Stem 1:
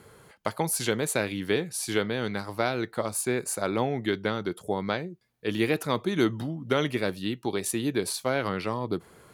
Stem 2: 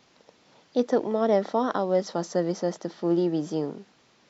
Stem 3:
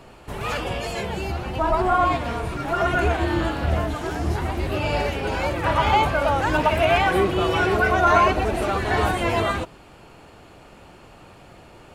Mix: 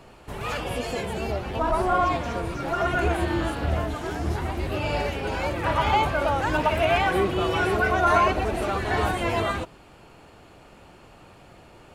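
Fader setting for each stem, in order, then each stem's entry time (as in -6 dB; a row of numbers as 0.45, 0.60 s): -17.5, -10.0, -3.0 dB; 0.00, 0.00, 0.00 s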